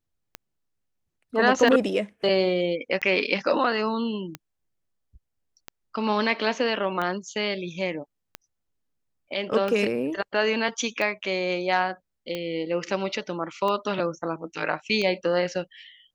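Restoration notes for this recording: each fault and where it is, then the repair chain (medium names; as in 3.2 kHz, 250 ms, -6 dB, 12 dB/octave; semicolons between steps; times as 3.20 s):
tick 45 rpm -17 dBFS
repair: de-click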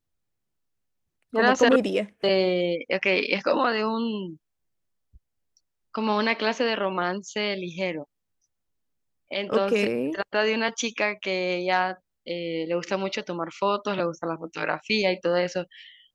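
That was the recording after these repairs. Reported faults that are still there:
nothing left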